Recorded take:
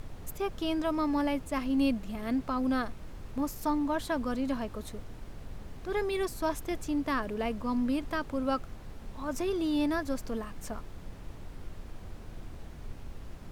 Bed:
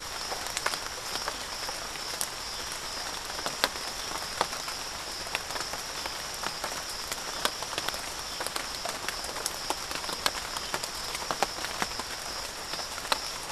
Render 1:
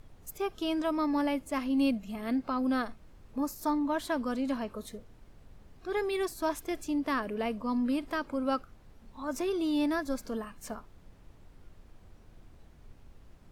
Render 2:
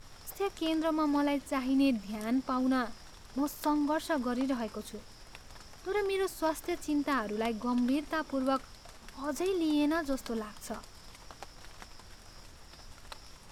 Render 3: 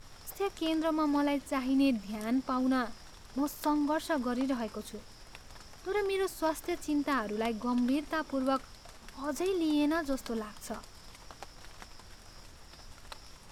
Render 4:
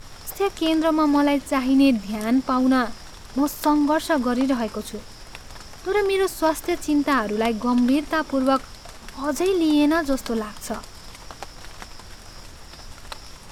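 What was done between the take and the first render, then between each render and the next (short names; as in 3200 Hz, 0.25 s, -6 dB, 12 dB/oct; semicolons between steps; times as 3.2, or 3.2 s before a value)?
noise print and reduce 11 dB
add bed -19.5 dB
nothing audible
gain +10.5 dB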